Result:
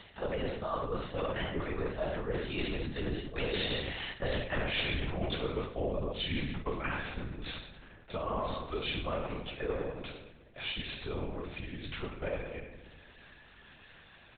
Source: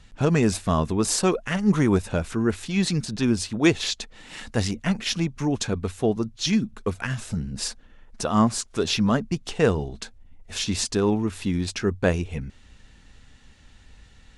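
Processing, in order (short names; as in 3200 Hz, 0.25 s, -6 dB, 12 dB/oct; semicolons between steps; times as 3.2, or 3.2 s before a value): Doppler pass-by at 4.44, 26 m/s, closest 7.4 m; in parallel at -2 dB: upward compressor, threshold -39 dBFS; on the sum: HPF 280 Hz 12 dB/oct; comb 1.7 ms, depth 62%; reverb RT60 1.2 s, pre-delay 5 ms, DRR 0 dB; LPC vocoder at 8 kHz whisper; reverse; compressor 10:1, threshold -39 dBFS, peak gain reduction 22 dB; reverse; gain +8.5 dB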